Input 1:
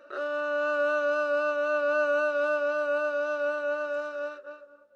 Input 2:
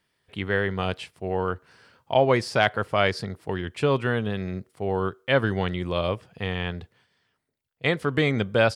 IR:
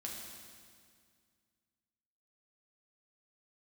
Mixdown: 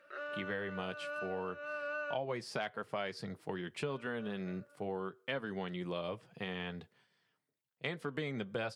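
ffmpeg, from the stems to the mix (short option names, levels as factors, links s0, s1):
-filter_complex "[0:a]equalizer=f=2100:w=1.5:g=14.5,volume=0.211,asplit=3[s0][s1][s2];[s0]atrim=end=2.18,asetpts=PTS-STARTPTS,afade=t=out:st=2.176:d=0.004:c=hsin[s3];[s1]atrim=start=2.18:end=3.86,asetpts=PTS-STARTPTS,volume=0[s4];[s2]atrim=start=3.86,asetpts=PTS-STARTPTS,afade=t=in:d=0.004:c=hsin[s5];[s3][s4][s5]concat=n=3:v=0:a=1[s6];[1:a]highpass=f=120:w=0.5412,highpass=f=120:w=1.3066,flanger=delay=4.1:depth=2.7:regen=-56:speed=0.74:shape=triangular,volume=0.75,asplit=2[s7][s8];[s8]apad=whole_len=218411[s9];[s6][s9]sidechaincompress=threshold=0.0251:ratio=8:attack=16:release=768[s10];[s10][s7]amix=inputs=2:normalize=0,acompressor=threshold=0.0158:ratio=4"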